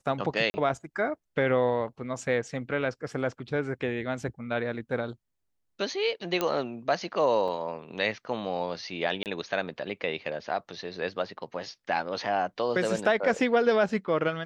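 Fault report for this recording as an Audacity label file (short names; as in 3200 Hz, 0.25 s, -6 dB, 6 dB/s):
0.500000	0.540000	gap 40 ms
6.410000	6.410000	pop -12 dBFS
7.480000	7.480000	gap 2.4 ms
9.230000	9.260000	gap 28 ms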